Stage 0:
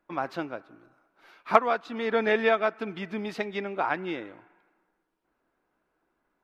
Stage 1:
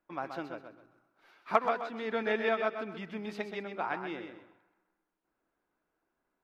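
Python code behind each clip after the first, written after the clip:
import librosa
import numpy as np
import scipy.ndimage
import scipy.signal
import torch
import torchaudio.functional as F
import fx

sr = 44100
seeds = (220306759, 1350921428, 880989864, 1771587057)

y = fx.echo_feedback(x, sr, ms=129, feedback_pct=26, wet_db=-7.5)
y = y * 10.0 ** (-7.0 / 20.0)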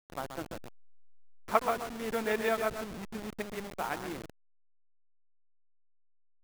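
y = fx.delta_hold(x, sr, step_db=-35.5)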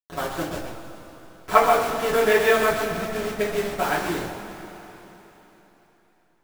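y = fx.rev_double_slope(x, sr, seeds[0], early_s=0.31, late_s=3.8, knee_db=-17, drr_db=-7.0)
y = y * 10.0 ** (4.5 / 20.0)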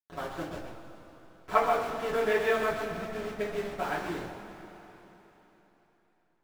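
y = fx.high_shelf(x, sr, hz=5800.0, db=-10.5)
y = y * 10.0 ** (-8.0 / 20.0)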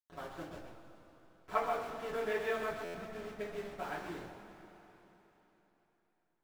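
y = fx.buffer_glitch(x, sr, at_s=(2.84,), block=512, repeats=8)
y = y * 10.0 ** (-8.5 / 20.0)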